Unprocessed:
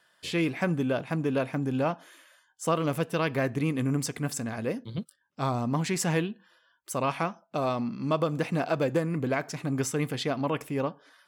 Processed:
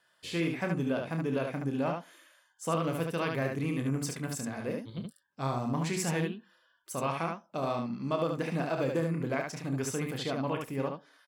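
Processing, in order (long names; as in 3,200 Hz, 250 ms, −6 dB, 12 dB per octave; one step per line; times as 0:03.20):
ambience of single reflections 30 ms −8 dB, 73 ms −4 dB
level −5.5 dB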